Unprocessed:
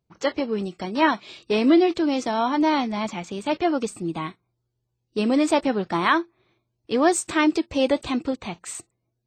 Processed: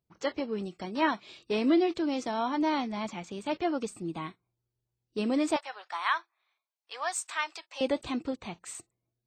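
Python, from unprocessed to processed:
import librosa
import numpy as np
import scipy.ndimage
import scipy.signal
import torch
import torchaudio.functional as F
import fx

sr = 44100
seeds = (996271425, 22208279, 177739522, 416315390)

y = fx.highpass(x, sr, hz=800.0, slope=24, at=(5.56, 7.81))
y = y * librosa.db_to_amplitude(-7.5)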